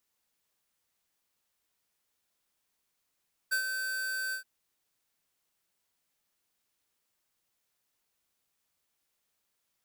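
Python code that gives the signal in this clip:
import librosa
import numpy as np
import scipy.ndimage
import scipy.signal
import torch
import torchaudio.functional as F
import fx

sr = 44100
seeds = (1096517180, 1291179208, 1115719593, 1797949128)

y = fx.adsr_tone(sr, wave='square', hz=1540.0, attack_ms=18.0, decay_ms=93.0, sustain_db=-6.5, held_s=0.82, release_ms=103.0, level_db=-27.5)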